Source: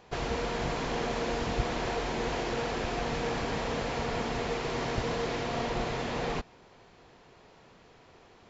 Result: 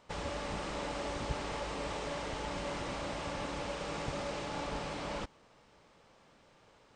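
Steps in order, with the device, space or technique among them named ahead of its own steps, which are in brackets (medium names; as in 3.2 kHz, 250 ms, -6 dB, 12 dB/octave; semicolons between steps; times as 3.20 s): nightcore (tape speed +22%); trim -6.5 dB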